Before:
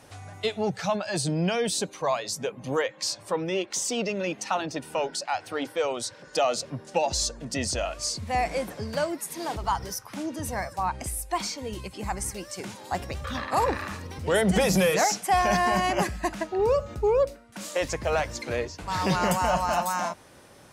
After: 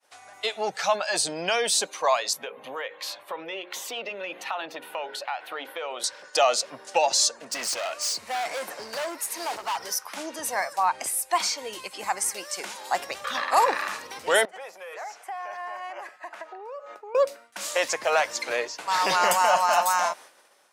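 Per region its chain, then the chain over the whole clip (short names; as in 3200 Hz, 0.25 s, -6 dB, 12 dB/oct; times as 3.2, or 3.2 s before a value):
2.33–6.04 band shelf 6600 Hz -15.5 dB 1.2 oct + notches 60/120/180/240/300/360/420/480/540 Hz + compressor 4:1, threshold -32 dBFS
7.36–9.81 notch 3400 Hz, Q 11 + hard clip -30.5 dBFS
14.45–17.15 compressor 20:1, threshold -34 dBFS + three-band isolator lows -23 dB, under 360 Hz, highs -14 dB, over 2300 Hz
whole clip: expander -44 dBFS; HPF 650 Hz 12 dB/oct; AGC gain up to 6 dB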